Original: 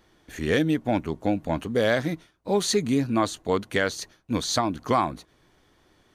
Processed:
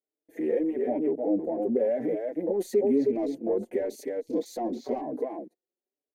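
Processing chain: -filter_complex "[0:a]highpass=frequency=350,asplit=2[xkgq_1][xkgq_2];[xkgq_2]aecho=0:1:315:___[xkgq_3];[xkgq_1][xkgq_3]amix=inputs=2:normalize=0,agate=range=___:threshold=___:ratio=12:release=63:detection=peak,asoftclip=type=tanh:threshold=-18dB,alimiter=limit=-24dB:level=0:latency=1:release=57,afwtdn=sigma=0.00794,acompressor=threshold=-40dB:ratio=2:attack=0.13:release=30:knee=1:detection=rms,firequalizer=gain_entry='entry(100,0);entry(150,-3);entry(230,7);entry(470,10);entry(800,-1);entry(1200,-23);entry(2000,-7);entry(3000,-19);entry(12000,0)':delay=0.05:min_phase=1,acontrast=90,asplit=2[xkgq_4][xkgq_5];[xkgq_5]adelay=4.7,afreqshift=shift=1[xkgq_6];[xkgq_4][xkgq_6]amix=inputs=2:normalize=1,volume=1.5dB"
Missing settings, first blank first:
0.316, -25dB, -57dB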